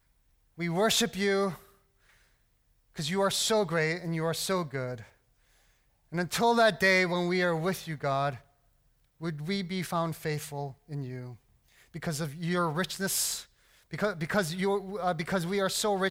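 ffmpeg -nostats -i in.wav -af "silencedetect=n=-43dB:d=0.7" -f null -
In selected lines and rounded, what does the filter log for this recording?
silence_start: 1.59
silence_end: 2.96 | silence_duration: 1.37
silence_start: 5.03
silence_end: 6.12 | silence_duration: 1.09
silence_start: 8.38
silence_end: 9.21 | silence_duration: 0.83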